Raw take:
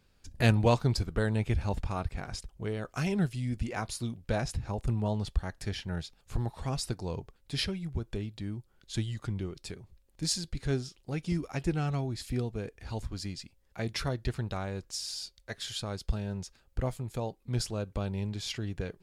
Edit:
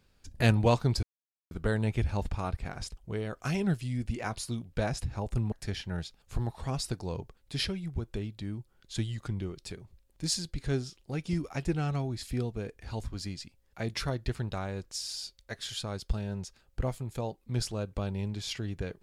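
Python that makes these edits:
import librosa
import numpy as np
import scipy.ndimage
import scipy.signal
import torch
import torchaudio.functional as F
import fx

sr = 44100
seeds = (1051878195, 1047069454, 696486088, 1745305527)

y = fx.edit(x, sr, fx.insert_silence(at_s=1.03, length_s=0.48),
    fx.cut(start_s=5.04, length_s=0.47), tone=tone)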